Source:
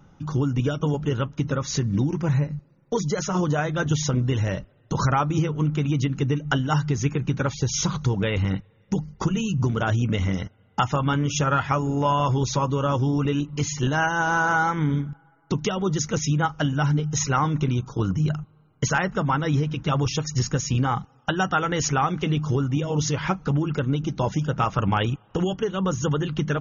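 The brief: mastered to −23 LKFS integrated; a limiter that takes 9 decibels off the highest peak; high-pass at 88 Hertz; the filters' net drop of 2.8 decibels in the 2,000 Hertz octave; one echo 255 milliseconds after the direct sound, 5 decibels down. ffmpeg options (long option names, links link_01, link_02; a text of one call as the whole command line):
ffmpeg -i in.wav -af "highpass=88,equalizer=frequency=2000:width_type=o:gain=-4.5,alimiter=limit=-19dB:level=0:latency=1,aecho=1:1:255:0.562,volume=4dB" out.wav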